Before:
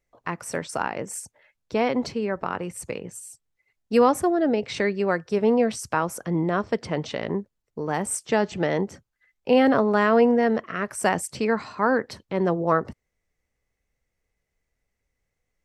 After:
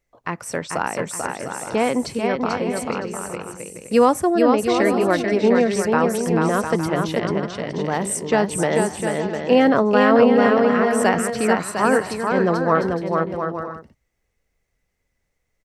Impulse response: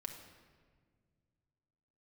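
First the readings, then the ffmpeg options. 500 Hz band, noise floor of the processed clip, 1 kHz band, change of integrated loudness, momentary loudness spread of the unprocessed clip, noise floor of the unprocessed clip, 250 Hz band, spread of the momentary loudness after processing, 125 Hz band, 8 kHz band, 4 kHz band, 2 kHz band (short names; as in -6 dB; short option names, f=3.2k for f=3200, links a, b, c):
+5.0 dB, -74 dBFS, +5.0 dB, +4.5 dB, 14 LU, -80 dBFS, +5.0 dB, 12 LU, +5.0 dB, +5.0 dB, +5.0 dB, +5.0 dB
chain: -af "aecho=1:1:440|704|862.4|957.4|1014:0.631|0.398|0.251|0.158|0.1,volume=3dB"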